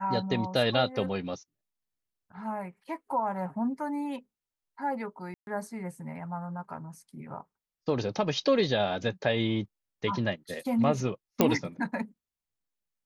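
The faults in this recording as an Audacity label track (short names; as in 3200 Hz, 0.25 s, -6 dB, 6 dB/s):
5.340000	5.470000	gap 0.131 s
11.410000	11.410000	pop -7 dBFS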